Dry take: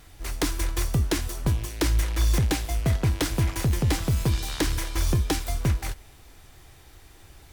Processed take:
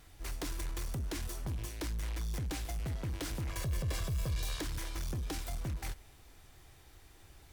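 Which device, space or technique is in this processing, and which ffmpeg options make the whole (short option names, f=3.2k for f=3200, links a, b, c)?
limiter into clipper: -filter_complex "[0:a]alimiter=limit=-20dB:level=0:latency=1:release=46,asoftclip=type=hard:threshold=-26dB,asettb=1/sr,asplit=3[a][b][c];[a]atrim=end=3.504[d];[b]atrim=start=3.5:end=4.61,asetpts=PTS-STARTPTS,afade=t=in:d=0.004:c=qsin,afade=t=out:st=1.106:d=0.004:c=qsin,aecho=1:1:1.8:0.65,atrim=end_sample=48951[e];[c]atrim=start=4.606[f];[d][e]acrossfade=d=0.004:c1=hsin:c2=qsin[g];[g][f]acrossfade=d=0.004:c1=qsin:c2=hsin,volume=-7.5dB"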